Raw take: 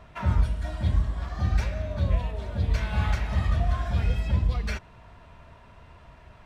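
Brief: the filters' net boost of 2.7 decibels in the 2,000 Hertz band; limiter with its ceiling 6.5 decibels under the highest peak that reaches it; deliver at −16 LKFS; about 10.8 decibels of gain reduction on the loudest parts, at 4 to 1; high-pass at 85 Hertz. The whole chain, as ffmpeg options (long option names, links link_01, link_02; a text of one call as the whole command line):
ffmpeg -i in.wav -af "highpass=85,equalizer=frequency=2000:width_type=o:gain=3.5,acompressor=threshold=-36dB:ratio=4,volume=26.5dB,alimiter=limit=-5dB:level=0:latency=1" out.wav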